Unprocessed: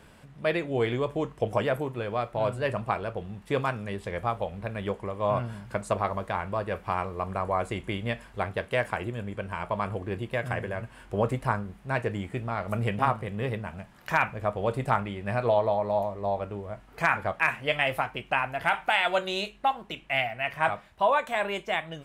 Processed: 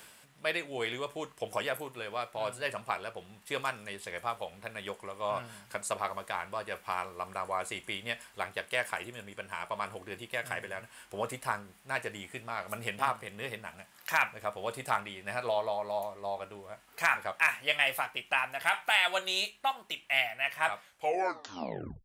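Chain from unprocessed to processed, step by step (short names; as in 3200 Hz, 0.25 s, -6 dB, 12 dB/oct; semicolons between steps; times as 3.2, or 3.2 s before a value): tape stop at the end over 1.26 s; reverse; upward compressor, threshold -39 dBFS; reverse; tilt +4 dB/oct; gain -5 dB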